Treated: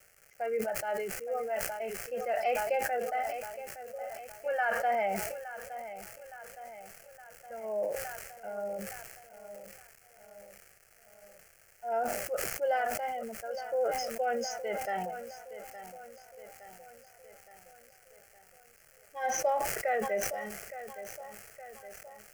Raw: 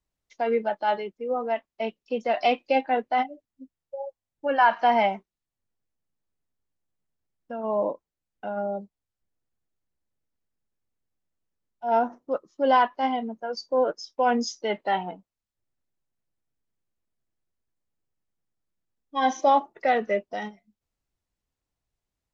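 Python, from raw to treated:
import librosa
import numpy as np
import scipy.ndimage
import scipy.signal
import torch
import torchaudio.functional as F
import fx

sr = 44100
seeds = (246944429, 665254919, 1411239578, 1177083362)

y = fx.dmg_crackle(x, sr, seeds[0], per_s=520.0, level_db=-36.0)
y = fx.fixed_phaser(y, sr, hz=1000.0, stages=6)
y = fx.echo_feedback(y, sr, ms=866, feedback_pct=56, wet_db=-13)
y = fx.sustainer(y, sr, db_per_s=36.0)
y = y * 10.0 ** (-7.0 / 20.0)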